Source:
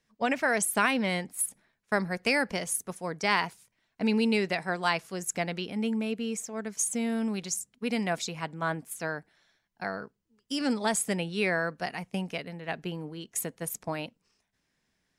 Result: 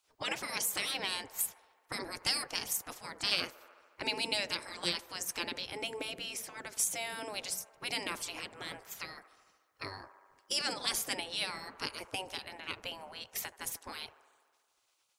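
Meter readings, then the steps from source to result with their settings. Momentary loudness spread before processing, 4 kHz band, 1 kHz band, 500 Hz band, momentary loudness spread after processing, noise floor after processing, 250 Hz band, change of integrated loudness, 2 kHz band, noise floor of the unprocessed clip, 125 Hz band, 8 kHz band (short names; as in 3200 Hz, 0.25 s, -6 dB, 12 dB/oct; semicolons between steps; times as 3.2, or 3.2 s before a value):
11 LU, +3.0 dB, -10.0 dB, -12.5 dB, 12 LU, -75 dBFS, -18.0 dB, -6.0 dB, -8.0 dB, -78 dBFS, -16.0 dB, -4.0 dB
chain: spectral gate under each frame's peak -15 dB weak; band-limited delay 73 ms, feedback 74%, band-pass 760 Hz, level -16.5 dB; dynamic EQ 1400 Hz, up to -7 dB, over -52 dBFS, Q 0.71; gain +7 dB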